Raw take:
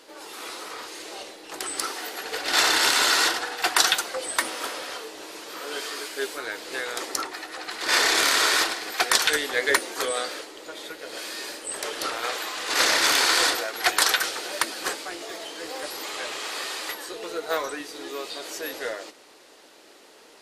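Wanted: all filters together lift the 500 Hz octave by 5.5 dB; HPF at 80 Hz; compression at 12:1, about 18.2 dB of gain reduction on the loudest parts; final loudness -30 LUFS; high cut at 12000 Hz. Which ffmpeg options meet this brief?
-af "highpass=80,lowpass=12k,equalizer=f=500:t=o:g=6.5,acompressor=threshold=-34dB:ratio=12,volume=7dB"

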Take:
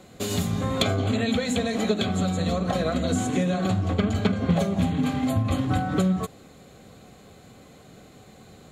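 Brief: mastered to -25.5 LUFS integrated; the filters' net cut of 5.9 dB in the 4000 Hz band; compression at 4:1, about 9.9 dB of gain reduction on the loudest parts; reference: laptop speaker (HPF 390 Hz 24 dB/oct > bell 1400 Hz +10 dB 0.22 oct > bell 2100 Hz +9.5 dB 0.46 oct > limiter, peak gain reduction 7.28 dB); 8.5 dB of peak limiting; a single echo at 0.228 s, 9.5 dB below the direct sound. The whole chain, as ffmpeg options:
-af "equalizer=f=4k:t=o:g=-8.5,acompressor=threshold=-30dB:ratio=4,alimiter=level_in=4dB:limit=-24dB:level=0:latency=1,volume=-4dB,highpass=f=390:w=0.5412,highpass=f=390:w=1.3066,equalizer=f=1.4k:t=o:w=0.22:g=10,equalizer=f=2.1k:t=o:w=0.46:g=9.5,aecho=1:1:228:0.335,volume=17dB,alimiter=limit=-15dB:level=0:latency=1"

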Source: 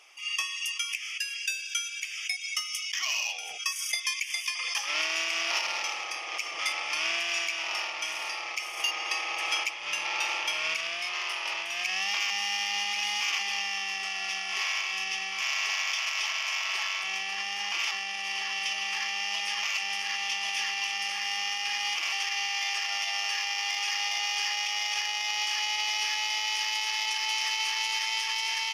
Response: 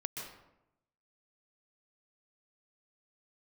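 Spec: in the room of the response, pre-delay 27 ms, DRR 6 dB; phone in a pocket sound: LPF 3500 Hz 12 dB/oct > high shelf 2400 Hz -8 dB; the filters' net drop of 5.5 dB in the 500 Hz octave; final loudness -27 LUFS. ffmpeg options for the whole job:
-filter_complex "[0:a]equalizer=f=500:t=o:g=-7.5,asplit=2[a][b];[1:a]atrim=start_sample=2205,adelay=27[c];[b][c]afir=irnorm=-1:irlink=0,volume=-6.5dB[d];[a][d]amix=inputs=2:normalize=0,lowpass=3.5k,highshelf=f=2.4k:g=-8,volume=7dB"

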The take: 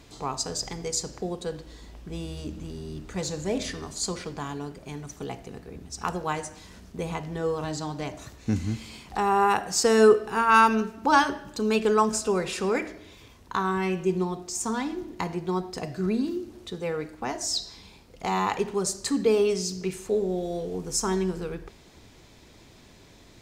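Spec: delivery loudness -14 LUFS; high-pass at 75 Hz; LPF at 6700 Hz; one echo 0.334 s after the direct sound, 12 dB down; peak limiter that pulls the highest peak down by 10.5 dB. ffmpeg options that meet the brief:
-af "highpass=75,lowpass=6.7k,alimiter=limit=-18dB:level=0:latency=1,aecho=1:1:334:0.251,volume=16dB"

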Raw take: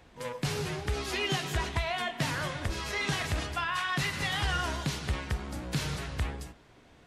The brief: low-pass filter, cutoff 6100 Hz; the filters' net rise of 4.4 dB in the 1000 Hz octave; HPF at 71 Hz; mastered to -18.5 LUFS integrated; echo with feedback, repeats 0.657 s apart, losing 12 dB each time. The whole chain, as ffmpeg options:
-af "highpass=71,lowpass=6.1k,equalizer=f=1k:t=o:g=5.5,aecho=1:1:657|1314|1971:0.251|0.0628|0.0157,volume=12.5dB"

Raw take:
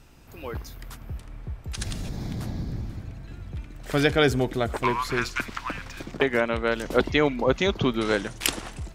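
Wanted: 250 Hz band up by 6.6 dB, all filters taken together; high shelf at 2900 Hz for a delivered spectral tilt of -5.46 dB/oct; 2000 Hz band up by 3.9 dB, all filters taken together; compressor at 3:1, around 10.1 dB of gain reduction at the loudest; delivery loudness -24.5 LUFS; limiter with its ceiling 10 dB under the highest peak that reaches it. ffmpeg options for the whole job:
-af "equalizer=f=250:t=o:g=8,equalizer=f=2k:t=o:g=8,highshelf=f=2.9k:g=-8.5,acompressor=threshold=-26dB:ratio=3,volume=8dB,alimiter=limit=-11dB:level=0:latency=1"

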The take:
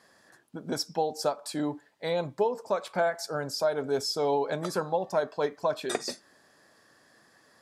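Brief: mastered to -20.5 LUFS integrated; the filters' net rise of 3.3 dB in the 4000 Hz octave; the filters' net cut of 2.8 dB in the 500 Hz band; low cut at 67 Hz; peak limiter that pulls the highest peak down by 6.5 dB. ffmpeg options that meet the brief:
-af "highpass=67,equalizer=f=500:t=o:g=-3.5,equalizer=f=4k:t=o:g=4.5,volume=13dB,alimiter=limit=-8.5dB:level=0:latency=1"

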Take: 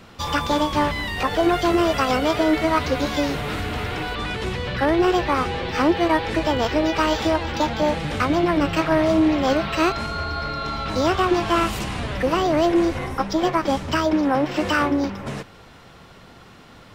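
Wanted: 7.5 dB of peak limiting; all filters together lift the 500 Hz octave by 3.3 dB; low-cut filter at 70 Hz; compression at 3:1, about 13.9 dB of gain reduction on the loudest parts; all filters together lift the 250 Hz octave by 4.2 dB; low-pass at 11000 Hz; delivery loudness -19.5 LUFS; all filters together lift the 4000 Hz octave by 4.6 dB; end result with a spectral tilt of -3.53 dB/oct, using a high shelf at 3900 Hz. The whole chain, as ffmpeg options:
-af "highpass=70,lowpass=11k,equalizer=f=250:t=o:g=4.5,equalizer=f=500:t=o:g=3,highshelf=f=3.9k:g=3.5,equalizer=f=4k:t=o:g=4,acompressor=threshold=-30dB:ratio=3,volume=12dB,alimiter=limit=-11dB:level=0:latency=1"

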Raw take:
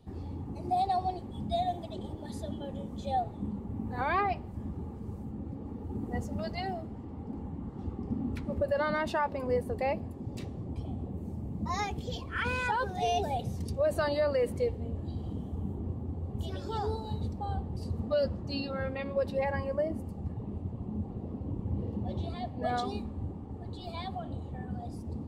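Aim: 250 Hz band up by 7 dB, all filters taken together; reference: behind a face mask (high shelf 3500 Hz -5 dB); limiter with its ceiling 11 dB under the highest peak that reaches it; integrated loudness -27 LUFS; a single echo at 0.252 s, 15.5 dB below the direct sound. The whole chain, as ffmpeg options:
-af "equalizer=f=250:t=o:g=8.5,alimiter=level_in=3dB:limit=-24dB:level=0:latency=1,volume=-3dB,highshelf=f=3.5k:g=-5,aecho=1:1:252:0.168,volume=8.5dB"

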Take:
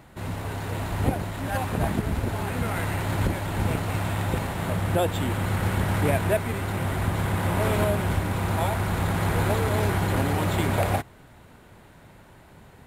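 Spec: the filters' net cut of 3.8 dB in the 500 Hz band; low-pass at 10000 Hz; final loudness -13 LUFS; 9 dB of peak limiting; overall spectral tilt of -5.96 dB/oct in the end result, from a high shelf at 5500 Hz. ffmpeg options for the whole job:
-af "lowpass=10k,equalizer=f=500:t=o:g=-5,highshelf=f=5.5k:g=-7,volume=17dB,alimiter=limit=-3.5dB:level=0:latency=1"

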